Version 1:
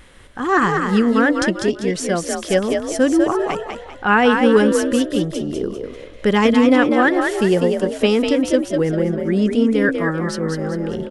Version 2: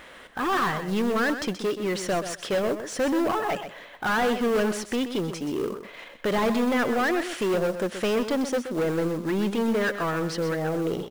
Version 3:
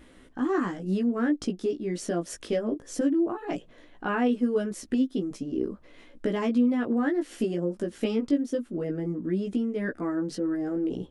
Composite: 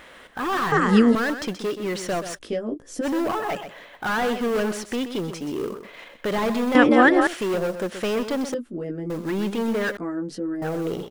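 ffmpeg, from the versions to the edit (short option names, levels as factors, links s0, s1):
-filter_complex "[0:a]asplit=2[s0][s1];[2:a]asplit=3[s2][s3][s4];[1:a]asplit=6[s5][s6][s7][s8][s9][s10];[s5]atrim=end=0.722[s11];[s0]atrim=start=0.718:end=1.152[s12];[s6]atrim=start=1.148:end=2.39[s13];[s2]atrim=start=2.35:end=3.06[s14];[s7]atrim=start=3.02:end=6.752[s15];[s1]atrim=start=6.748:end=7.272[s16];[s8]atrim=start=7.268:end=8.542[s17];[s3]atrim=start=8.538:end=9.102[s18];[s9]atrim=start=9.098:end=9.972[s19];[s4]atrim=start=9.968:end=10.622[s20];[s10]atrim=start=10.618[s21];[s11][s12]acrossfade=d=0.004:c1=hsin:c2=hsin[s22];[s22][s13]acrossfade=d=0.004:c1=hsin:c2=hsin[s23];[s23][s14]acrossfade=d=0.04:c1=tri:c2=tri[s24];[s24][s15]acrossfade=d=0.04:c1=tri:c2=tri[s25];[s25][s16]acrossfade=d=0.004:c1=hsin:c2=hsin[s26];[s26][s17]acrossfade=d=0.004:c1=hsin:c2=hsin[s27];[s27][s18]acrossfade=d=0.004:c1=hsin:c2=hsin[s28];[s28][s19]acrossfade=d=0.004:c1=hsin:c2=hsin[s29];[s29][s20]acrossfade=d=0.004:c1=hsin:c2=hsin[s30];[s30][s21]acrossfade=d=0.004:c1=hsin:c2=hsin"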